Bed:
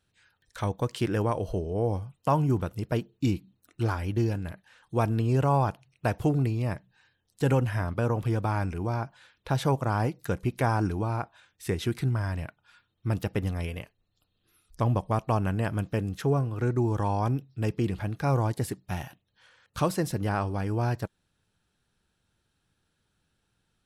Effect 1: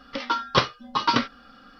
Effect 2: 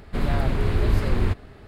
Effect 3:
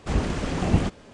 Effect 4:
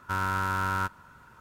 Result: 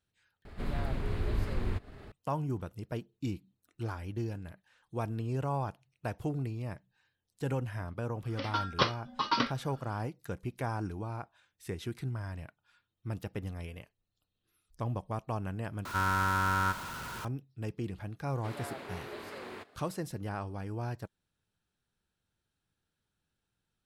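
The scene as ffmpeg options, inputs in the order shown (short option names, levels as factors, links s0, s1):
-filter_complex "[2:a]asplit=2[s0][s1];[0:a]volume=0.335[s2];[s0]acompressor=mode=upward:threshold=0.0398:ratio=2.5:attack=3.2:release=140:knee=2.83:detection=peak[s3];[4:a]aeval=exprs='val(0)+0.5*0.0188*sgn(val(0))':c=same[s4];[s1]highpass=420[s5];[s2]asplit=3[s6][s7][s8];[s6]atrim=end=0.454[s9];[s3]atrim=end=1.67,asetpts=PTS-STARTPTS,volume=0.282[s10];[s7]atrim=start=2.116:end=15.854[s11];[s4]atrim=end=1.4,asetpts=PTS-STARTPTS,volume=0.794[s12];[s8]atrim=start=17.246[s13];[1:a]atrim=end=1.79,asetpts=PTS-STARTPTS,volume=0.422,afade=t=in:d=0.004:c=hsin,afade=t=out:st=1.786:d=0.004:c=hsin,adelay=8240[s14];[s5]atrim=end=1.67,asetpts=PTS-STARTPTS,volume=0.282,afade=t=in:d=0.004:c=hsin,afade=t=out:st=1.666:d=0.004:c=hsin,adelay=18300[s15];[s9][s10]acrossfade=d=0.004:c1=hsin:c2=hsin[s16];[s16][s11]acrossfade=d=0.004:c1=hsin:c2=hsin[s17];[s17][s12]acrossfade=d=0.004:c1=hsin:c2=hsin[s18];[s18][s13]acrossfade=d=0.004:c1=hsin:c2=hsin[s19];[s19][s14][s15]amix=inputs=3:normalize=0"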